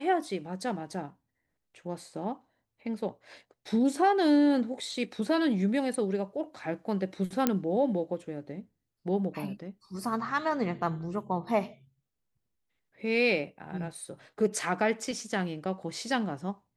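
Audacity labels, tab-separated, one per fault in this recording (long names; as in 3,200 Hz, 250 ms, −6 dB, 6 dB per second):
7.470000	7.470000	click −10 dBFS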